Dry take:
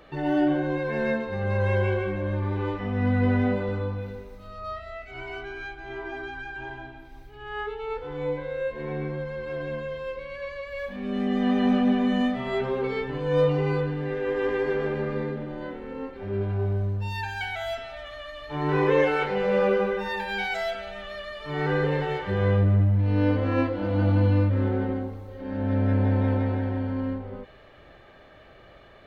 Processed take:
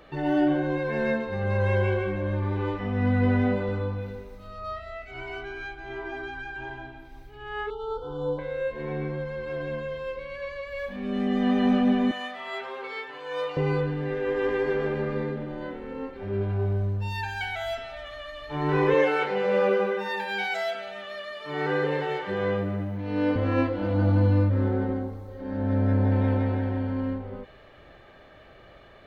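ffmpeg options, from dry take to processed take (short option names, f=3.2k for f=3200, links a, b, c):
-filter_complex "[0:a]asettb=1/sr,asplit=3[a][b][c];[a]atrim=end=7.704[d];[b]atrim=start=7.7:end=8.39,asetpts=PTS-STARTPTS,afade=t=in:d=0.004:c=qsin,afade=t=out:st=0.686:d=0.004:c=qsin,asuperstop=centerf=2100:order=20:qfactor=1.4[e];[c]atrim=start=8.386[f];[d][e]acrossfade=d=0.004:c1=hsin:c2=qsin[g];[g][f]acrossfade=d=0.004:c1=qsin:c2=hsin,asettb=1/sr,asplit=3[h][i][j];[h]atrim=end=12.114[k];[i]atrim=start=12.11:end=13.57,asetpts=PTS-STARTPTS,afade=t=in:d=0.004:c=qsin,afade=t=out:st=1.456:d=0.004:c=qsin,highpass=830[l];[j]atrim=start=13.566[m];[k][l]acrossfade=d=0.004:c1=hsin:c2=qsin[n];[n][m]acrossfade=d=0.004:c1=qsin:c2=hsin,asettb=1/sr,asplit=3[o][p][q];[o]atrim=end=18.944[r];[p]atrim=start=18.94:end=23.36,asetpts=PTS-STARTPTS,afade=t=in:d=0.004:c=qsin,afade=t=out:st=4.416:d=0.004:c=qsin,highpass=210[s];[q]atrim=start=23.356[t];[r][s]acrossfade=d=0.004:c1=hsin:c2=qsin[u];[u][t]acrossfade=d=0.004:c1=qsin:c2=hsin,asettb=1/sr,asplit=3[v][w][x];[v]atrim=end=23.934[y];[w]atrim=start=23.93:end=26.12,asetpts=PTS-STARTPTS,afade=t=in:d=0.004:c=qsin,afade=t=out:st=2.186:d=0.004:c=qsin,equalizer=f=2.7k:w=1.8:g=-6[z];[x]atrim=start=26.116[aa];[y][z]acrossfade=d=0.004:c1=hsin:c2=qsin[ab];[ab][aa]acrossfade=d=0.004:c1=qsin:c2=hsin"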